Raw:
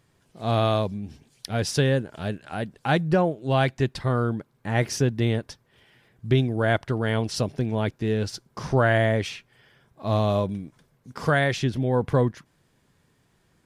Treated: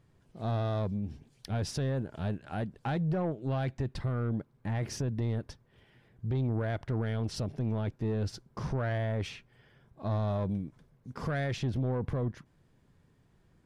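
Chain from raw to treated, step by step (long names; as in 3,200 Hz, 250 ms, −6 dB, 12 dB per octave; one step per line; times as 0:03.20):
spectral tilt −2 dB per octave
brickwall limiter −15.5 dBFS, peak gain reduction 10.5 dB
soft clipping −19.5 dBFS, distortion −16 dB
level −5 dB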